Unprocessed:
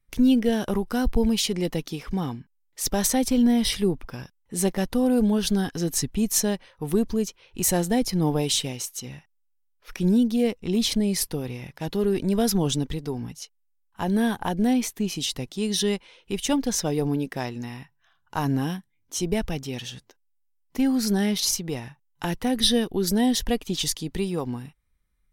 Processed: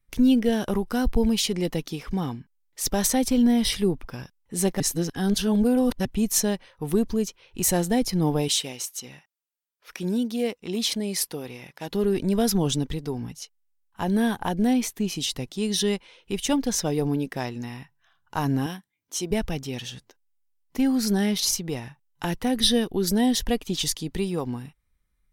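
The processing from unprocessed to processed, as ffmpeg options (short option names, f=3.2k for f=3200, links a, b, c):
-filter_complex "[0:a]asettb=1/sr,asplit=3[a][b][c];[a]atrim=end=8.484[d];[b]atrim=start=8.48:end=11.91,asetpts=PTS-STARTPTS,afade=t=in:d=0.004:c=qsin,afade=t=out:st=3.426:d=0.004:c=qsin,highpass=f=380:p=1[e];[c]atrim=start=11.906[f];[d][e]acrossfade=d=0.004:c1=hsin:c2=qsin[g];[g][f]acrossfade=d=0.004:c1=qsin:c2=hsin,asettb=1/sr,asplit=3[h][i][j];[h]atrim=end=18.664[k];[i]atrim=start=18.66:end=19.31,asetpts=PTS-STARTPTS,afade=t=in:d=0.004:c=qsin,afade=t=out:st=0.646:d=0.004:c=qsin,highpass=f=330:p=1[l];[j]atrim=start=19.306[m];[k][l]acrossfade=d=0.004:c1=hsin:c2=qsin[n];[n][m]acrossfade=d=0.004:c1=qsin:c2=hsin,asplit=3[o][p][q];[o]atrim=end=4.802[r];[p]atrim=start=4.798:end=6.052,asetpts=PTS-STARTPTS,areverse[s];[q]atrim=start=6.048[t];[r][s]acrossfade=d=0.004:c1=hsin:c2=hsin[u];[u][t]acrossfade=d=0.004:c1=hsin:c2=hsin"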